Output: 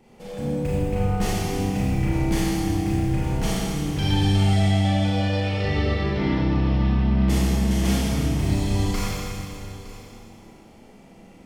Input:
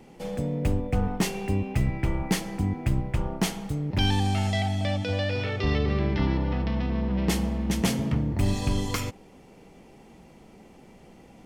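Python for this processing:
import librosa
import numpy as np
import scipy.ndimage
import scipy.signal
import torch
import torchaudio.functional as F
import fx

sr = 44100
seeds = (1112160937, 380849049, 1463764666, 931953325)

y = x + 10.0 ** (-17.0 / 20.0) * np.pad(x, (int(913 * sr / 1000.0), 0))[:len(x)]
y = fx.rev_schroeder(y, sr, rt60_s=2.5, comb_ms=27, drr_db=-8.0)
y = y * 10.0 ** (-6.0 / 20.0)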